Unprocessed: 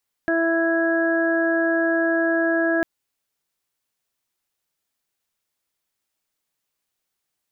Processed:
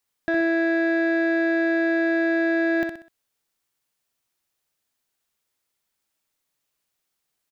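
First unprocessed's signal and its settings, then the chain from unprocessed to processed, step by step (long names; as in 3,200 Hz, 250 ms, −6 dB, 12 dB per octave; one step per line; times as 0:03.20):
steady harmonic partials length 2.55 s, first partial 331 Hz, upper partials −1.5/−19.5/−14.5/−2 dB, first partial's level −21 dB
soft clipping −16.5 dBFS
on a send: repeating echo 63 ms, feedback 37%, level −5.5 dB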